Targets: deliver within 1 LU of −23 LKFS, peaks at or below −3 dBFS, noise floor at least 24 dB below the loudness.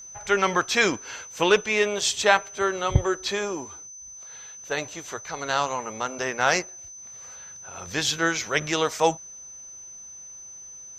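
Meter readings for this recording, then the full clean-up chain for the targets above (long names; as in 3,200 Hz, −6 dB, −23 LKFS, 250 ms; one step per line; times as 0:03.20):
interfering tone 6,100 Hz; level of the tone −40 dBFS; integrated loudness −24.5 LKFS; sample peak −2.5 dBFS; target loudness −23.0 LKFS
→ notch filter 6,100 Hz, Q 30
level +1.5 dB
brickwall limiter −3 dBFS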